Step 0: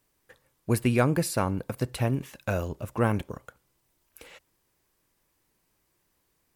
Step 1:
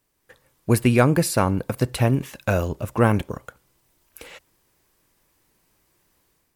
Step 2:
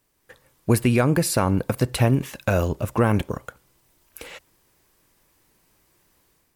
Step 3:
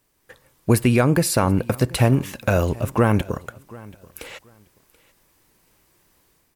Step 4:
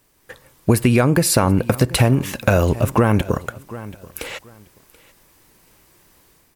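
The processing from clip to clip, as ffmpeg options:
-af "dynaudnorm=f=130:g=5:m=2.24"
-af "alimiter=limit=0.266:level=0:latency=1:release=139,volume=1.33"
-af "aecho=1:1:732|1464:0.0794|0.0167,volume=1.26"
-af "acompressor=threshold=0.126:ratio=6,volume=2.24"

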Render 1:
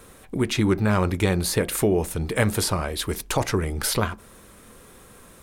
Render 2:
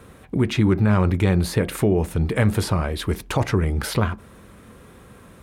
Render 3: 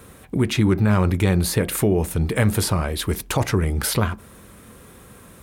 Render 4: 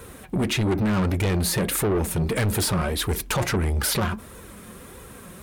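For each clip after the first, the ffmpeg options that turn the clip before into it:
-filter_complex "[0:a]highpass=55,bass=f=250:g=6,treble=f=4000:g=-9,asplit=2[s0][s1];[s1]alimiter=limit=0.211:level=0:latency=1,volume=1.41[s2];[s0][s2]amix=inputs=2:normalize=0,volume=0.501"
-af "crystalizer=i=1.5:c=0"
-af "flanger=delay=2:depth=3.6:regen=41:speed=1.6:shape=sinusoidal,asoftclip=type=tanh:threshold=0.0501,volume=2.24"

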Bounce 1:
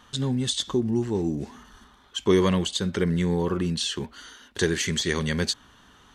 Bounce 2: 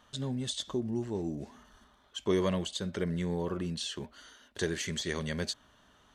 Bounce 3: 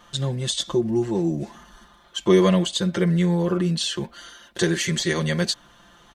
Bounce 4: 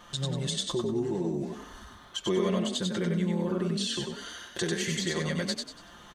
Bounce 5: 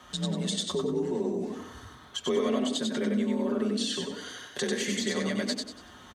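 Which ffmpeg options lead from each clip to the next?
-af "equalizer=f=620:w=5.2:g=11,volume=0.355"
-af "aecho=1:1:5.8:0.9,volume=2.66"
-filter_complex "[0:a]acompressor=threshold=0.0158:ratio=2,asplit=2[s0][s1];[s1]asplit=4[s2][s3][s4][s5];[s2]adelay=95,afreqshift=30,volume=0.708[s6];[s3]adelay=190,afreqshift=60,volume=0.24[s7];[s4]adelay=285,afreqshift=90,volume=0.0822[s8];[s5]adelay=380,afreqshift=120,volume=0.0279[s9];[s6][s7][s8][s9]amix=inputs=4:normalize=0[s10];[s0][s10]amix=inputs=2:normalize=0"
-filter_complex "[0:a]afreqshift=38,asplit=2[s0][s1];[s1]adelay=87,lowpass=f=820:p=1,volume=0.355,asplit=2[s2][s3];[s3]adelay=87,lowpass=f=820:p=1,volume=0.5,asplit=2[s4][s5];[s5]adelay=87,lowpass=f=820:p=1,volume=0.5,asplit=2[s6][s7];[s7]adelay=87,lowpass=f=820:p=1,volume=0.5,asplit=2[s8][s9];[s9]adelay=87,lowpass=f=820:p=1,volume=0.5,asplit=2[s10][s11];[s11]adelay=87,lowpass=f=820:p=1,volume=0.5[s12];[s0][s2][s4][s6][s8][s10][s12]amix=inputs=7:normalize=0"

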